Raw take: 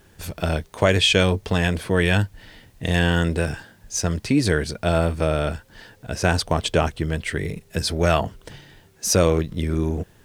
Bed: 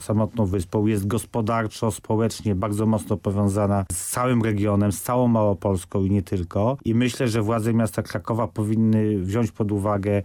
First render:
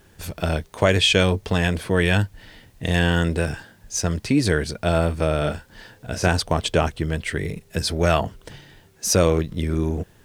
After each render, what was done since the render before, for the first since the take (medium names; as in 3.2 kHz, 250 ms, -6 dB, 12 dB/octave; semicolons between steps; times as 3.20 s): 5.38–6.28 s: doubling 33 ms -6.5 dB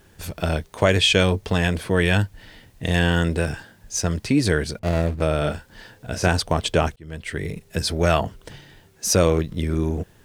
4.79–5.22 s: median filter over 41 samples; 6.96–7.71 s: fade in equal-power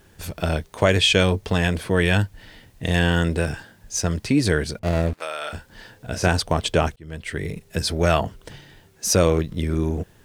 5.13–5.53 s: high-pass 1 kHz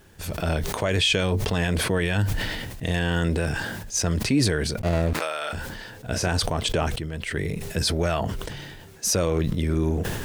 peak limiter -12.5 dBFS, peak gain reduction 9 dB; decay stretcher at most 31 dB/s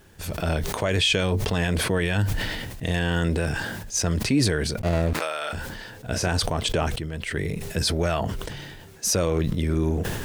no audible change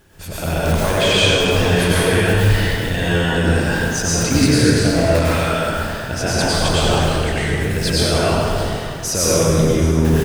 delay 627 ms -18 dB; plate-style reverb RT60 2.4 s, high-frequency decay 0.7×, pre-delay 85 ms, DRR -8.5 dB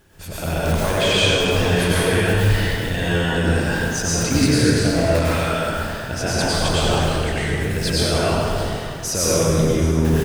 trim -2.5 dB